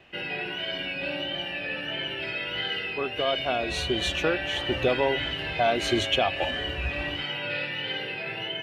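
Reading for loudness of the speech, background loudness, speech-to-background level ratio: -28.5 LUFS, -30.0 LUFS, 1.5 dB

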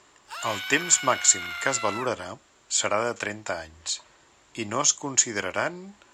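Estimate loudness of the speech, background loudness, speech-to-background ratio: -25.0 LUFS, -33.0 LUFS, 8.0 dB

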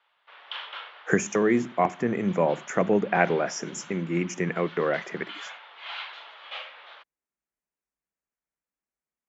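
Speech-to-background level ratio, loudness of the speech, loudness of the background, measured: 16.0 dB, -26.0 LUFS, -42.0 LUFS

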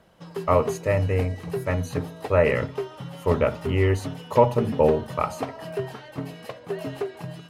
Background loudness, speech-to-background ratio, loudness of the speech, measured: -34.0 LUFS, 10.0 dB, -24.0 LUFS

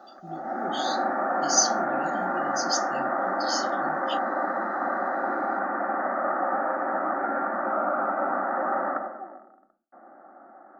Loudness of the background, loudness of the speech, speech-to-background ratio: -27.5 LUFS, -29.5 LUFS, -2.0 dB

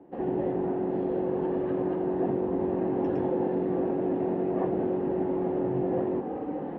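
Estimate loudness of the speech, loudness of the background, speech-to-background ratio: -29.5 LUFS, -35.0 LUFS, 5.5 dB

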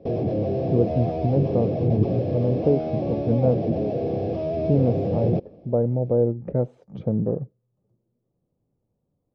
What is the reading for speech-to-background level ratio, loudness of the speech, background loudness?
1.5 dB, -24.5 LUFS, -26.0 LUFS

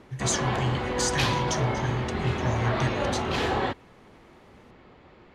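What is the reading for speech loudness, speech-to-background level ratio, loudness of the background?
-30.5 LUFS, -2.5 dB, -28.0 LUFS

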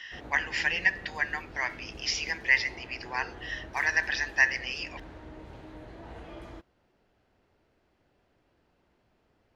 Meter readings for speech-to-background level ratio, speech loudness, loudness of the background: 18.0 dB, -28.5 LUFS, -46.5 LUFS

